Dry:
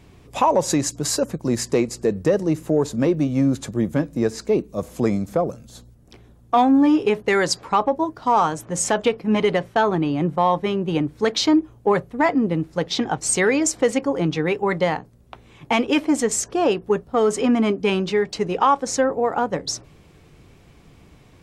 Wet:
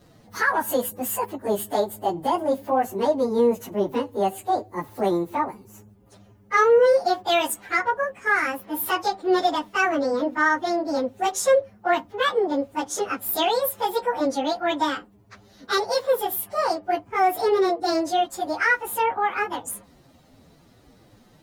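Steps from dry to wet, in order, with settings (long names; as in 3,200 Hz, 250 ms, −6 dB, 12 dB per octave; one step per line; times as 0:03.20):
phase-vocoder pitch shift without resampling +9.5 semitones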